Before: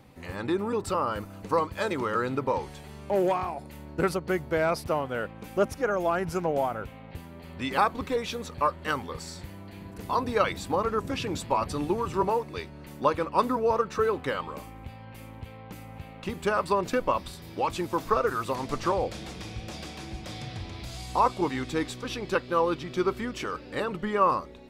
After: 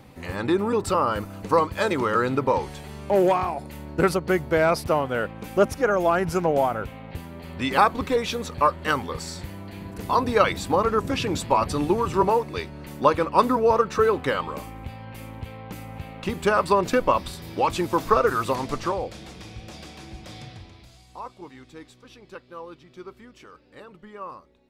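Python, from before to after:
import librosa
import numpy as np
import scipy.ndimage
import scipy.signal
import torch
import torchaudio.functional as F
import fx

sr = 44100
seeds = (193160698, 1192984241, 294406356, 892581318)

y = fx.gain(x, sr, db=fx.line((18.51, 5.5), (19.06, -2.0), (20.42, -2.0), (21.05, -14.5)))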